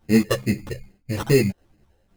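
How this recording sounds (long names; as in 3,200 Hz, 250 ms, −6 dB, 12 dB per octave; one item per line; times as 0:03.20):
phaser sweep stages 6, 2.4 Hz, lowest notch 230–1,000 Hz
tremolo saw down 1.9 Hz, depth 45%
aliases and images of a low sample rate 2,300 Hz, jitter 0%
a shimmering, thickened sound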